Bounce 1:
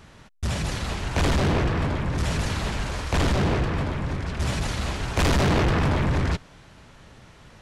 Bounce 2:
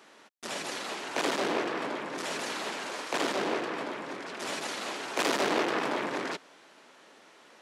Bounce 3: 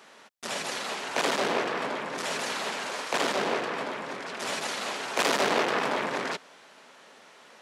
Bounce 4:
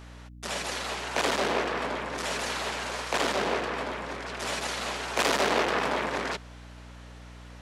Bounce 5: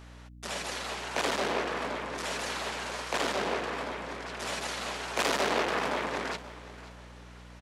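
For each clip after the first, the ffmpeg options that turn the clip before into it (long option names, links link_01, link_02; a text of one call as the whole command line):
ffmpeg -i in.wav -af "highpass=frequency=290:width=0.5412,highpass=frequency=290:width=1.3066,volume=-3dB" out.wav
ffmpeg -i in.wav -af "equalizer=frequency=320:width=3.7:gain=-8,volume=3.5dB" out.wav
ffmpeg -i in.wav -af "aeval=exprs='val(0)+0.00562*(sin(2*PI*60*n/s)+sin(2*PI*2*60*n/s)/2+sin(2*PI*3*60*n/s)/3+sin(2*PI*4*60*n/s)/4+sin(2*PI*5*60*n/s)/5)':channel_layout=same" out.wav
ffmpeg -i in.wav -af "aecho=1:1:528|1056|1584:0.141|0.0551|0.0215,volume=-3dB" out.wav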